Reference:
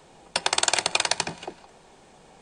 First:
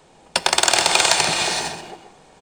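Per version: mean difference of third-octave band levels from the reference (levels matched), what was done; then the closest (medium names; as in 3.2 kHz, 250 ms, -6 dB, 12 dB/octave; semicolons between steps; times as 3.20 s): 7.0 dB: gated-style reverb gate 490 ms rising, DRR 3 dB; waveshaping leveller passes 1; echo from a far wall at 22 m, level -8 dB; trim +2.5 dB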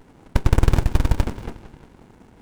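9.0 dB: graphic EQ 250/500/1000/2000/4000/8000 Hz +11/+8/+9/+11/-6/+11 dB; on a send: two-band feedback delay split 2.6 kHz, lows 179 ms, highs 95 ms, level -12.5 dB; on the sum: sliding maximum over 65 samples; trim -4 dB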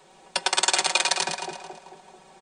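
4.0 dB: bass shelf 190 Hz -11.5 dB; comb 5.3 ms, depth 71%; on a send: two-band feedback delay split 970 Hz, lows 220 ms, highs 110 ms, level -5.5 dB; on the sum: trim -2 dB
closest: third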